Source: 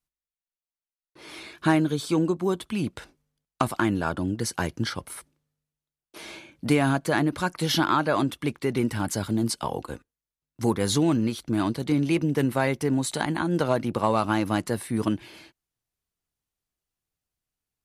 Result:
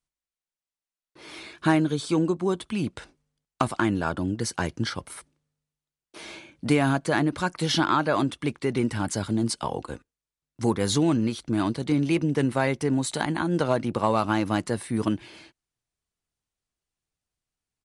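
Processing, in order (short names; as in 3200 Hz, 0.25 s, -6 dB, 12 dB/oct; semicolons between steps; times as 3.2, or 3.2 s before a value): downsampling 22050 Hz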